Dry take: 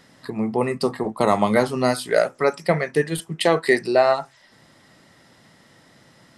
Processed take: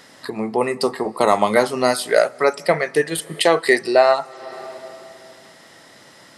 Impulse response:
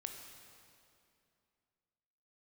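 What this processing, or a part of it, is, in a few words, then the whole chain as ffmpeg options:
ducked reverb: -filter_complex "[0:a]bass=f=250:g=-11,treble=f=4k:g=2,asplit=3[a][b][c];[1:a]atrim=start_sample=2205[d];[b][d]afir=irnorm=-1:irlink=0[e];[c]apad=whole_len=281304[f];[e][f]sidechaincompress=threshold=-39dB:ratio=5:attack=20:release=261,volume=0.5dB[g];[a][g]amix=inputs=2:normalize=0,volume=3dB"

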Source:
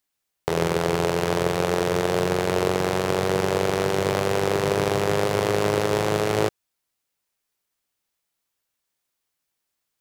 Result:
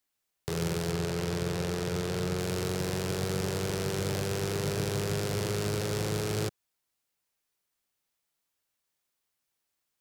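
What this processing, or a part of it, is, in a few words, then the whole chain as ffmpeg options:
one-band saturation: -filter_complex "[0:a]asettb=1/sr,asplit=3[a][b][c];[a]atrim=end=0.914[d];[b]atrim=start=0.91:end=2.38,asetpts=PTS-STARTPTS,afade=t=in:d=0.004:c=qsin,afade=t=out:st=1.466:d=0.004:c=qsin,highshelf=f=7.4k:g=-6[e];[c]atrim=start=2.376[f];[d][e]acrossfade=d=0.004:c1=hsin:c2=qsin[g];[g][f]acrossfade=d=0.004:c1=qsin:c2=hsin,acrossover=split=220|2900[h][i][j];[i]asoftclip=type=tanh:threshold=-30.5dB[k];[h][k][j]amix=inputs=3:normalize=0,volume=-2.5dB"

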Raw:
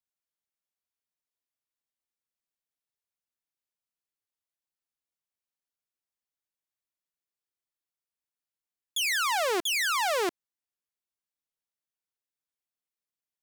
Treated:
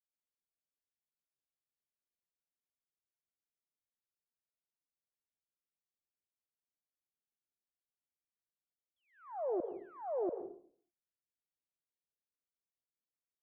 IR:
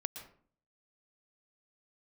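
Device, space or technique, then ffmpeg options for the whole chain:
next room: -filter_complex "[0:a]lowpass=f=640:w=0.5412,lowpass=f=640:w=1.3066[a];[1:a]atrim=start_sample=2205[b];[a][b]afir=irnorm=-1:irlink=0,volume=-4dB"

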